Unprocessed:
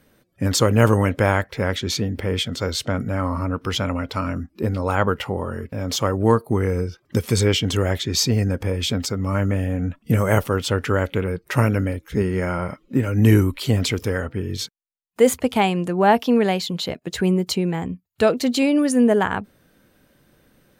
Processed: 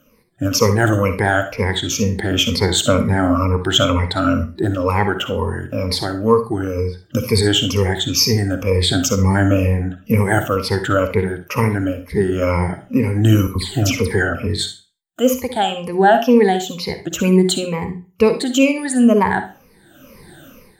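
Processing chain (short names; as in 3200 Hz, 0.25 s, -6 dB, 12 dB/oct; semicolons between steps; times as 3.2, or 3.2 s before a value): moving spectral ripple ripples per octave 0.87, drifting -2.1 Hz, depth 20 dB; notches 60/120/180 Hz; AGC gain up to 14 dB; 13.47–14.47 dispersion lows, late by 85 ms, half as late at 1900 Hz; reverb RT60 0.35 s, pre-delay 46 ms, DRR 8.5 dB; gain -2 dB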